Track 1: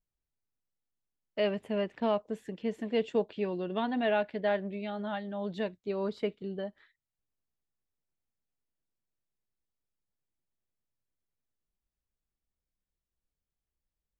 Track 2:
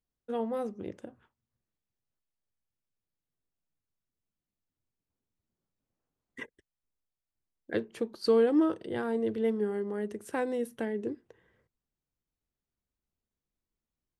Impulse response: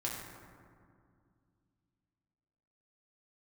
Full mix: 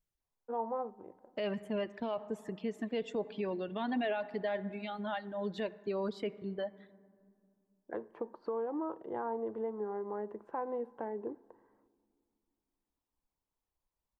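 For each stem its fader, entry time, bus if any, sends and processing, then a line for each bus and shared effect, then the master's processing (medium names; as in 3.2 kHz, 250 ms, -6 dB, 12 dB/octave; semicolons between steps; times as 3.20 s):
+0.5 dB, 0.00 s, send -19.5 dB, reverb removal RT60 1.8 s
-3.0 dB, 0.20 s, send -23.5 dB, high-pass 430 Hz 6 dB/octave; compression 10:1, threshold -32 dBFS, peak gain reduction 10 dB; resonant low-pass 950 Hz, resonance Q 3.9; auto duck -18 dB, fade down 0.55 s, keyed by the first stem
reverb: on, RT60 2.2 s, pre-delay 4 ms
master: peak limiter -26.5 dBFS, peak gain reduction 10 dB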